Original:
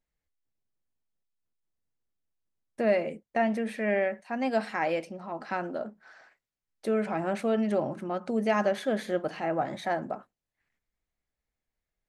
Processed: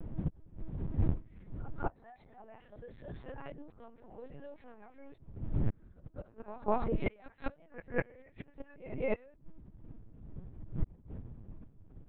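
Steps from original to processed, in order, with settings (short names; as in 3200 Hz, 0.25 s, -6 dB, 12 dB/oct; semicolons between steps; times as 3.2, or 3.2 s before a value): whole clip reversed; wind noise 110 Hz -34 dBFS; Doppler pass-by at 3.8, 12 m/s, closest 13 m; formant-preserving pitch shift +4.5 st; flipped gate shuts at -34 dBFS, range -36 dB; pre-echo 0.202 s -16 dB; LPC vocoder at 8 kHz pitch kept; gain +16 dB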